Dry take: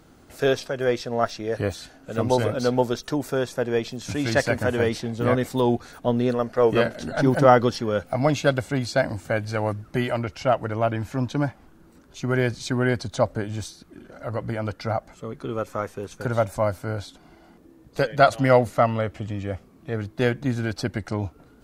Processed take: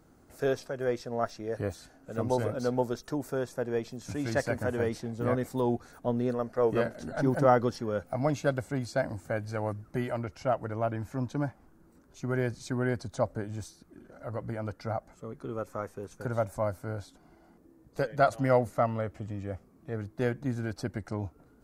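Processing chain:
parametric band 3,200 Hz −9 dB 1.2 octaves
level −7 dB

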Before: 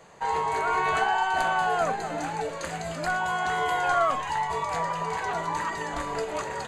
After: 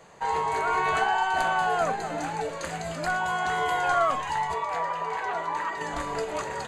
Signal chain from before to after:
0:04.54–0:05.81: bass and treble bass −12 dB, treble −9 dB

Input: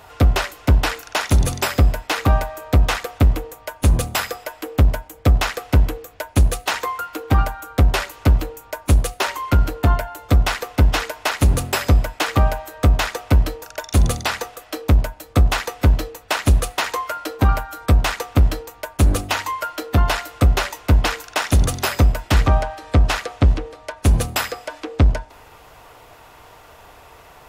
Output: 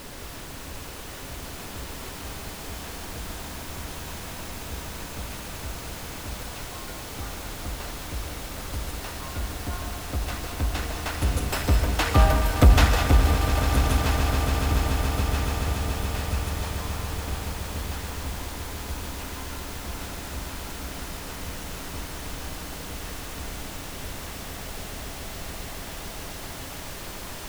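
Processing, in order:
source passing by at 0:12.53, 6 m/s, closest 2.3 metres
background noise pink −40 dBFS
echo that builds up and dies away 142 ms, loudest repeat 8, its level −13 dB
reverb whose tail is shaped and stops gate 230 ms rising, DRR 5 dB

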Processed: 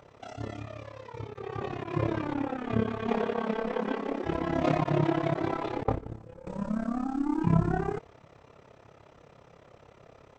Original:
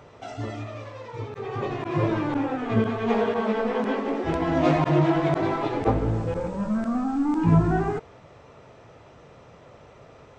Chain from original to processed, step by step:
amplitude modulation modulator 34 Hz, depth 70%
0:05.83–0:06.47: noise gate −24 dBFS, range −15 dB
level −2 dB

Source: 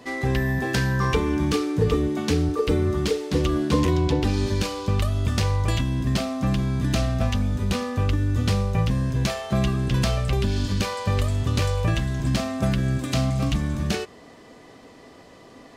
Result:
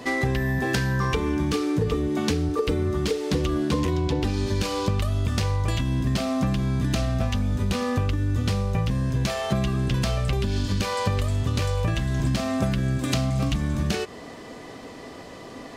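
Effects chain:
downward compressor 6 to 1, threshold −28 dBFS, peak gain reduction 12 dB
level +7 dB

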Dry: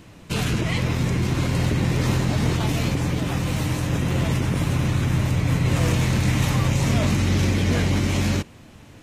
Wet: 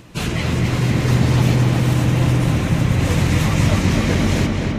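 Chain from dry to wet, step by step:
time stretch by phase vocoder 0.53×
on a send: feedback echo with a low-pass in the loop 257 ms, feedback 76%, low-pass 4,700 Hz, level −4 dB
on the sum: level +5.5 dB

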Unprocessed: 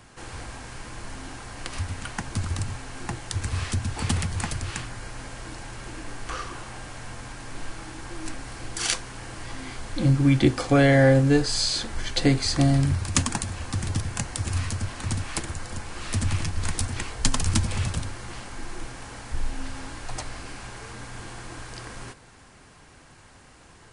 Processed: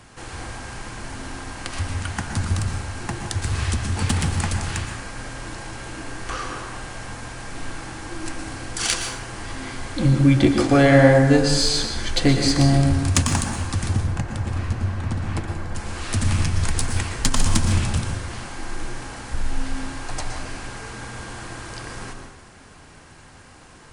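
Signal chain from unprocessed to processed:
0:13.93–0:15.75: low-pass filter 1,300 Hz 6 dB per octave
in parallel at −4 dB: asymmetric clip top −20 dBFS
on the sum: dense smooth reverb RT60 0.99 s, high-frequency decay 0.55×, pre-delay 105 ms, DRR 4 dB
level −1 dB

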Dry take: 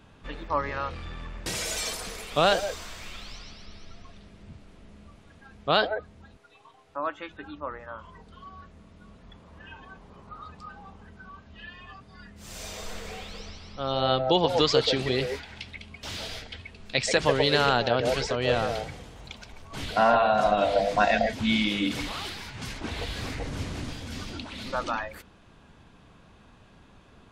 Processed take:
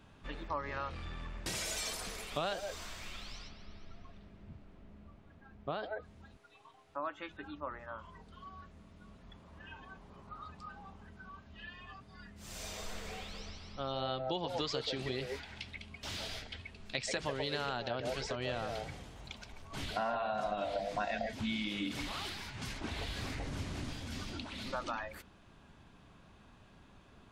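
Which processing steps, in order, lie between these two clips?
notch filter 480 Hz, Q 12
downward compressor 3 to 1, threshold −30 dBFS, peak gain reduction 10.5 dB
0:03.47–0:05.82: low-pass filter 2,600 Hz → 1,100 Hz 6 dB per octave
level −5 dB

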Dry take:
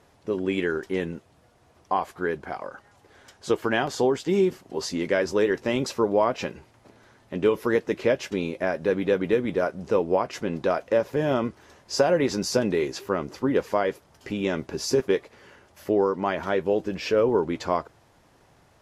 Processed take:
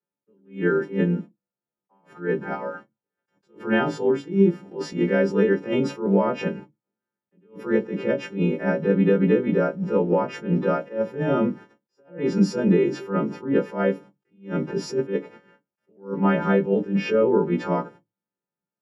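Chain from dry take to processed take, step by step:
every partial snapped to a pitch grid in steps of 2 semitones
noise gate −45 dBFS, range −40 dB
low-pass filter 1,200 Hz 6 dB per octave
spectral tilt −1.5 dB per octave
downward compressor 4 to 1, threshold −23 dBFS, peak gain reduction 7.5 dB
convolution reverb RT60 0.15 s, pre-delay 3 ms, DRR 6.5 dB
level that may rise only so fast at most 180 dB per second

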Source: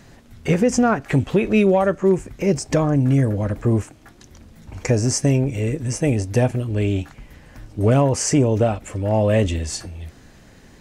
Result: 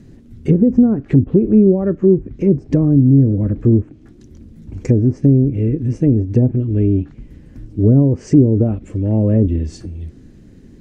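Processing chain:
low shelf with overshoot 500 Hz +14 dB, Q 1.5
treble cut that deepens with the level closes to 680 Hz, closed at 1 dBFS
level −9 dB

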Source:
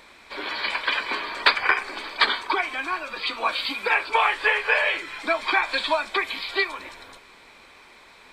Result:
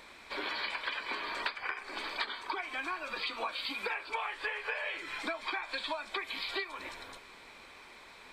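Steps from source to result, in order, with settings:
downward compressor 10 to 1, threshold −30 dBFS, peak gain reduction 18 dB
level −3 dB

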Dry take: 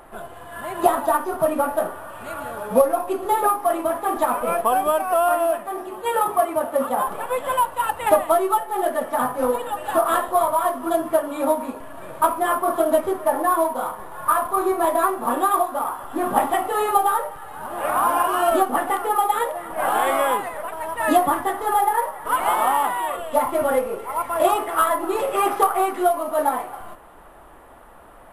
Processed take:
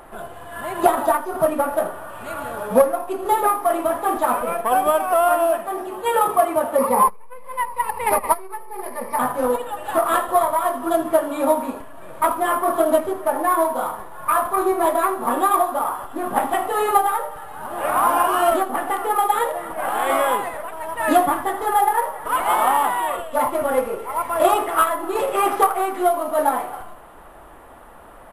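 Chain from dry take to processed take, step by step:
0:06.78–0:09.19: EQ curve with evenly spaced ripples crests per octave 0.88, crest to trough 16 dB
repeating echo 81 ms, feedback 36%, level −14.5 dB
saturating transformer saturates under 470 Hz
level +2.5 dB

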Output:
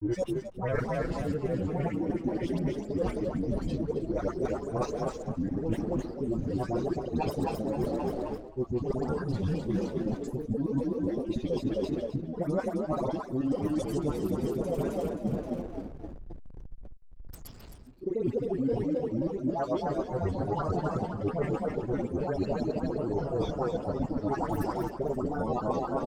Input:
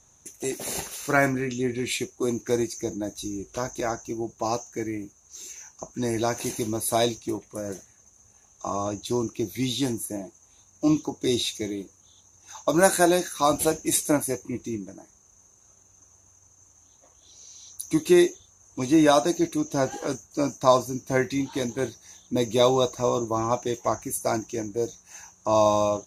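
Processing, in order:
slices reordered back to front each 88 ms, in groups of 7
comb filter 5.6 ms, depth 80%
granular cloud, pitch spread up and down by 7 semitones
all-pass dispersion highs, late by 108 ms, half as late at 1,400 Hz
echo with shifted repeats 263 ms, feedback 62%, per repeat +33 Hz, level −8 dB
slack as between gear wheels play −39.5 dBFS
spectral tilt −4.5 dB per octave
reversed playback
downward compressor 16 to 1, threshold −29 dBFS, peak gain reduction 27 dB
reversed playback
level +2.5 dB

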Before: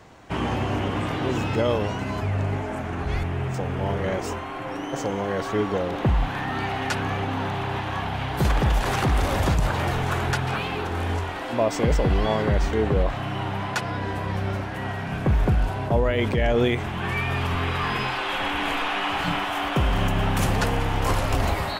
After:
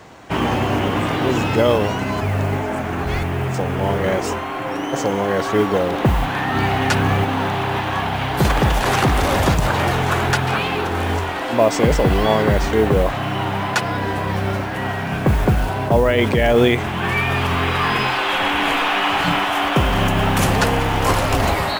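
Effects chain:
0:06.54–0:07.24: low-shelf EQ 190 Hz +8.5 dB
noise that follows the level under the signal 31 dB
low-shelf EQ 82 Hz −8.5 dB
level +7.5 dB

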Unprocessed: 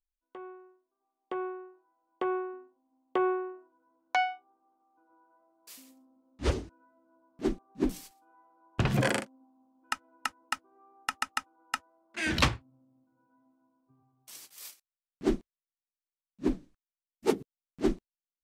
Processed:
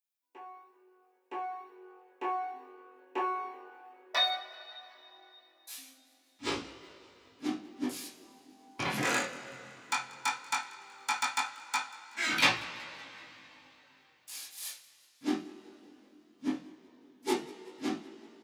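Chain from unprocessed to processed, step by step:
gain on one half-wave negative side −3 dB
high-pass filter 100 Hz 12 dB per octave
RIAA equalisation recording
formants moved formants −3 semitones
echo with shifted repeats 188 ms, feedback 54%, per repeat +45 Hz, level −22 dB
convolution reverb, pre-delay 3 ms, DRR −9 dB
chorus effect 0.16 Hz, delay 17.5 ms, depth 6.1 ms
level −5.5 dB

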